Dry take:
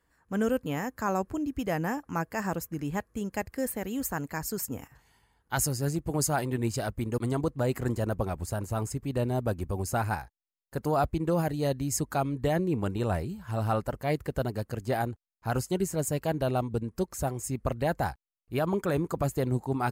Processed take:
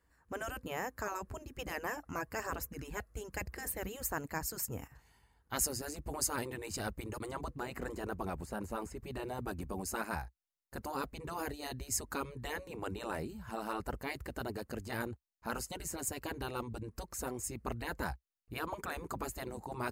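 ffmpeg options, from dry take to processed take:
ffmpeg -i in.wav -filter_complex "[0:a]asettb=1/sr,asplit=3[link_01][link_02][link_03];[link_01]atrim=end=1.584[link_04];[link_02]atrim=start=1.58:end=3.87,asetpts=PTS-STARTPTS,afade=type=in:duration=0.004:curve=qsin,afade=type=out:start_time=2.286:duration=0.004:curve=qsin,aphaser=in_gain=1:out_gain=1:delay=1.5:decay=0.43:speed=1:type=sinusoidal[link_05];[link_03]atrim=start=3.866[link_06];[link_04][link_05]acrossfade=duration=0.004:curve1=hsin:curve2=qsin[link_07];[link_07][link_06]acrossfade=duration=0.004:curve1=qsin:curve2=hsin,asettb=1/sr,asplit=3[link_08][link_09][link_10];[link_08]atrim=end=7.284[link_11];[link_09]atrim=start=7.28:end=9.45,asetpts=PTS-STARTPTS,afade=type=in:duration=0.004:curve=qsin,afade=type=out:start_time=2.166:duration=0.004:curve=qsin,acrossover=split=3300[link_12][link_13];[link_13]acompressor=threshold=-49dB:ratio=4:attack=1:release=60[link_14];[link_12][link_14]amix=inputs=2:normalize=0[link_15];[link_10]atrim=start=9.446[link_16];[link_11][link_15]acrossfade=duration=0.004:curve1=hsin:curve2=qsin[link_17];[link_17][link_16]acrossfade=duration=0.004:curve1=qsin:curve2=hsin,bandreject=frequency=3300:width=16,afftfilt=real='re*lt(hypot(re,im),0.158)':imag='im*lt(hypot(re,im),0.158)':win_size=1024:overlap=0.75,equalizer=frequency=62:width_type=o:width=0.79:gain=6.5,volume=-3dB" out.wav

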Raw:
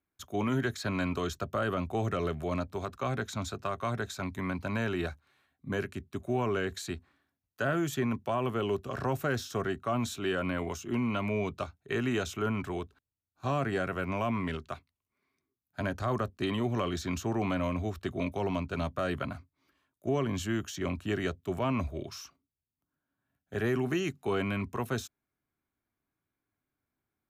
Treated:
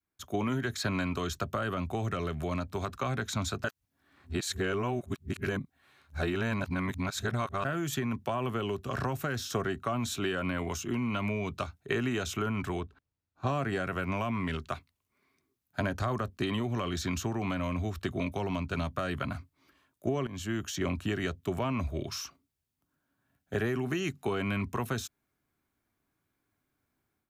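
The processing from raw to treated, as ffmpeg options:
ffmpeg -i in.wav -filter_complex "[0:a]asettb=1/sr,asplit=3[link_01][link_02][link_03];[link_01]atrim=end=12.804[link_04];[link_02]atrim=start=12.8:end=13.47,asetpts=PTS-STARTPTS,afade=type=in:duration=0.004:curve=qsin,afade=type=out:start_time=0.666:duration=0.004:curve=qsin,lowpass=frequency=1900:poles=1[link_05];[link_03]atrim=start=13.466[link_06];[link_04][link_05]acrossfade=duration=0.004:curve1=hsin:curve2=qsin[link_07];[link_07][link_06]acrossfade=duration=0.004:curve1=qsin:curve2=hsin,asplit=4[link_08][link_09][link_10][link_11];[link_08]atrim=end=3.642[link_12];[link_09]atrim=start=3.638:end=7.652,asetpts=PTS-STARTPTS,areverse[link_13];[link_10]atrim=start=7.648:end=20.27,asetpts=PTS-STARTPTS,afade=type=out:start_time=12.618:duration=0.004:curve=hsin:silence=0.199526[link_14];[link_11]atrim=start=20.27,asetpts=PTS-STARTPTS,afade=type=in:duration=0.69:silence=0.199526[link_15];[link_12][link_13]acrossfade=duration=0.004:curve1=hsin:curve2=hsin[link_16];[link_14][link_15]concat=n=2:v=0:a=1[link_17];[link_16][link_17]acrossfade=duration=0.004:curve1=hsin:curve2=hsin,acompressor=threshold=-33dB:ratio=6,adynamicequalizer=threshold=0.00355:dfrequency=490:dqfactor=0.76:tfrequency=490:tqfactor=0.76:attack=5:release=100:ratio=0.375:range=2.5:mode=cutabove:tftype=bell,dynaudnorm=framelen=180:gausssize=3:maxgain=9dB,volume=-2.5dB" out.wav

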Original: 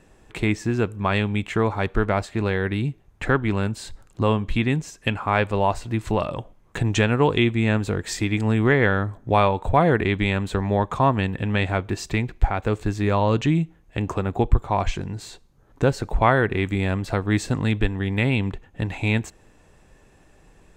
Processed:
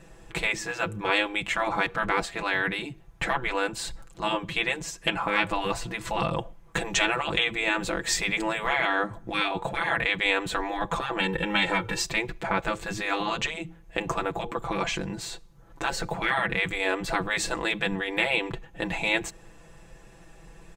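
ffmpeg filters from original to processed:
ffmpeg -i in.wav -filter_complex "[0:a]asettb=1/sr,asplit=3[link_01][link_02][link_03];[link_01]atrim=end=11.194[link_04];[link_02]atrim=start=11.19:end=12.02,asetpts=PTS-STARTPTS,afade=type=in:duration=0.004:curve=qsin,afade=type=out:start_time=0.826:duration=0.004:curve=qsin,aecho=1:1:2.2:0.87,atrim=end_sample=36603[link_05];[link_03]atrim=start=12.016[link_06];[link_04][link_05]acrossfade=duration=0.004:curve1=hsin:curve2=qsin[link_07];[link_07][link_06]acrossfade=duration=0.004:curve1=qsin:curve2=hsin,afftfilt=real='re*lt(hypot(re,im),0.251)':imag='im*lt(hypot(re,im),0.251)':win_size=1024:overlap=0.75,equalizer=frequency=280:width_type=o:width=0.6:gain=-4,aecho=1:1:6:0.75,volume=2dB" out.wav

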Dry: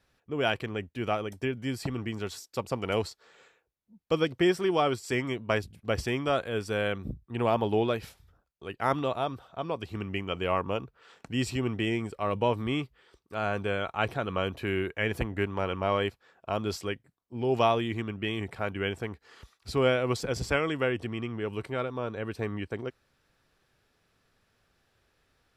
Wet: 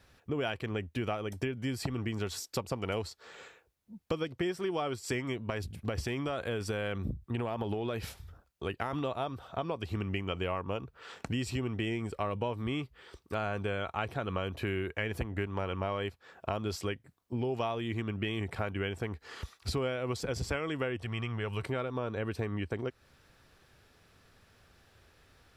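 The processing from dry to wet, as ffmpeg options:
ffmpeg -i in.wav -filter_complex "[0:a]asettb=1/sr,asplit=3[link_01][link_02][link_03];[link_01]atrim=end=5.454[link_04];[link_02]atrim=start=5.45:end=8.93,asetpts=PTS-STARTPTS,afade=type=in:duration=0.004:curve=qsin,afade=type=out:start_time=3.476:duration=0.004:curve=qsin,acompressor=threshold=-28dB:ratio=6:attack=3.2:release=140:knee=1:detection=peak[link_05];[link_03]atrim=start=8.926[link_06];[link_04][link_05]acrossfade=duration=0.004:curve1=hsin:curve2=qsin[link_07];[link_07][link_06]acrossfade=duration=0.004:curve1=qsin:curve2=hsin,asettb=1/sr,asplit=3[link_08][link_09][link_10];[link_08]atrim=end=20.974[link_11];[link_09]atrim=start=20.97:end=21.62,asetpts=PTS-STARTPTS,afade=type=in:duration=0.004:curve=qsin,afade=type=out:start_time=0.646:duration=0.004:curve=qsin,equalizer=frequency=300:width_type=o:width=1.2:gain=-12[link_12];[link_10]atrim=start=21.616[link_13];[link_11][link_12]acrossfade=duration=0.004:curve1=hsin:curve2=qsin[link_14];[link_14][link_13]acrossfade=duration=0.004:curve1=qsin:curve2=hsin,equalizer=frequency=79:width_type=o:width=0.77:gain=5.5,acompressor=threshold=-39dB:ratio=6,volume=7.5dB" out.wav

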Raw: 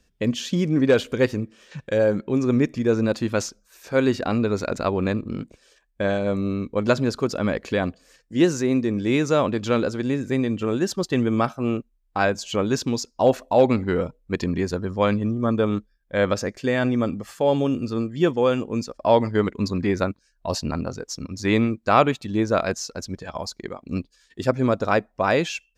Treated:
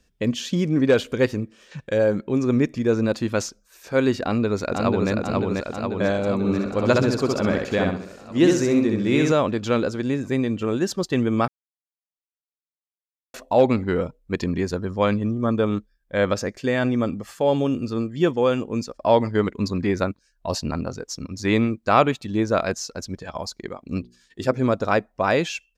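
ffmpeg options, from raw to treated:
ffmpeg -i in.wav -filter_complex "[0:a]asplit=2[link_01][link_02];[link_02]afade=type=in:start_time=4.23:duration=0.01,afade=type=out:start_time=5.11:duration=0.01,aecho=0:1:490|980|1470|1960|2450|2940|3430|3920|4410|4900|5390|5880:0.749894|0.524926|0.367448|0.257214|0.18005|0.126035|0.0882243|0.061757|0.0432299|0.0302609|0.0211827|0.0148279[link_03];[link_01][link_03]amix=inputs=2:normalize=0,asettb=1/sr,asplit=3[link_04][link_05][link_06];[link_04]atrim=end=6.384[link_07];[link_05]atrim=start=6.38:end=9.32,asetpts=PTS-STARTPTS,afade=type=in:duration=0.004:curve=qsin,afade=type=out:start_time=2.936:duration=0.004:curve=qsin,aecho=1:1:65|130|195|260:0.708|0.234|0.0771|0.0254,atrim=end_sample=129654[link_08];[link_06]atrim=start=9.316[link_09];[link_07][link_08]acrossfade=duration=0.004:curve1=hsin:curve2=qsin[link_10];[link_10][link_09]acrossfade=duration=0.004:curve1=qsin:curve2=hsin,asettb=1/sr,asplit=3[link_11][link_12][link_13];[link_11]atrim=end=23.994[link_14];[link_12]atrim=start=23.99:end=24.62,asetpts=PTS-STARTPTS,afade=type=in:duration=0.004:curve=qsin,afade=type=out:start_time=0.626:duration=0.004:curve=qsin,bandreject=frequency=60:width_type=h:width=6,bandreject=frequency=120:width_type=h:width=6,bandreject=frequency=180:width_type=h:width=6,bandreject=frequency=240:width_type=h:width=6,bandreject=frequency=300:width_type=h:width=6,bandreject=frequency=360:width_type=h:width=6,bandreject=frequency=420:width_type=h:width=6,bandreject=frequency=480:width_type=h:width=6[link_15];[link_13]atrim=start=24.616[link_16];[link_14][link_15]acrossfade=duration=0.004:curve1=hsin:curve2=qsin[link_17];[link_17][link_16]acrossfade=duration=0.004:curve1=qsin:curve2=hsin,asplit=3[link_18][link_19][link_20];[link_18]atrim=end=11.48,asetpts=PTS-STARTPTS,afade=type=out:start_time=11.476:duration=0.004:curve=hsin[link_21];[link_19]atrim=start=11.48:end=13.34,asetpts=PTS-STARTPTS,volume=0[link_22];[link_20]atrim=start=13.34,asetpts=PTS-STARTPTS,afade=type=in:duration=0.004:curve=hsin[link_23];[link_21][link_22][link_23]concat=n=3:v=0:a=1" out.wav

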